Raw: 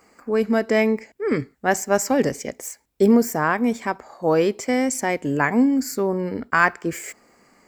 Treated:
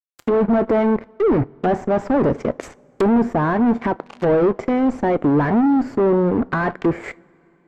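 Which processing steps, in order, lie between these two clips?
fuzz pedal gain 30 dB, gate −38 dBFS
treble cut that deepens with the level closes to 970 Hz, closed at −16 dBFS
coupled-rooms reverb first 0.22 s, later 3.3 s, from −22 dB, DRR 16.5 dB

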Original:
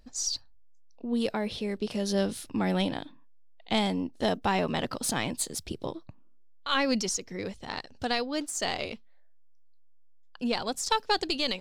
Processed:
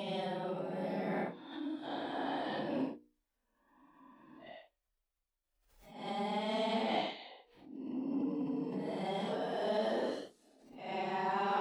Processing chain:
reversed piece by piece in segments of 241 ms
high-shelf EQ 2,000 Hz −9.5 dB
brickwall limiter −24 dBFS, peak gain reduction 8.5 dB
harmonic and percussive parts rebalanced harmonic +4 dB
reversed playback
downward compressor 12 to 1, threshold −37 dBFS, peak gain reduction 14 dB
reversed playback
extreme stretch with random phases 6.7×, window 0.05 s, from 0:02.71
in parallel at −4 dB: soft clipping −35 dBFS, distortion −15 dB
on the sum: high-pass filter 310 Hz 12 dB per octave
mains-hum notches 60/120/180/240/300/360/420/480 Hz
background raised ahead of every attack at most 80 dB per second
level +4 dB

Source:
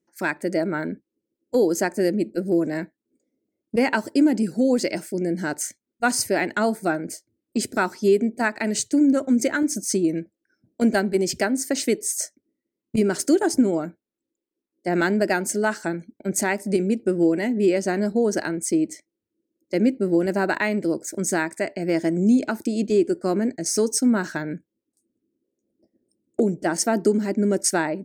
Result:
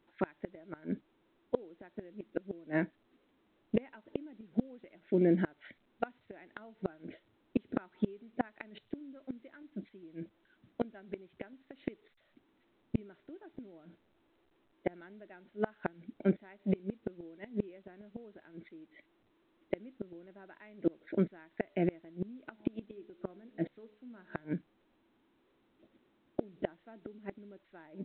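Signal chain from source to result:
0:22.46–0:24.53: hum removal 70.33 Hz, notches 15
gate with flip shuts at −15 dBFS, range −30 dB
level −2 dB
A-law companding 64 kbit/s 8,000 Hz

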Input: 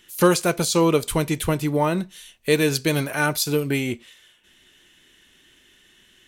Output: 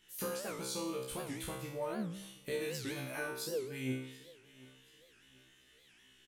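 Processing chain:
0:03.18–0:03.64: parametric band 370 Hz +14 dB 0.97 octaves
downward compressor 5 to 1, threshold −27 dBFS, peak gain reduction 17 dB
tuned comb filter 65 Hz, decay 0.66 s, harmonics all, mix 100%
repeating echo 732 ms, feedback 35%, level −21 dB
wow of a warped record 78 rpm, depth 250 cents
level +2 dB

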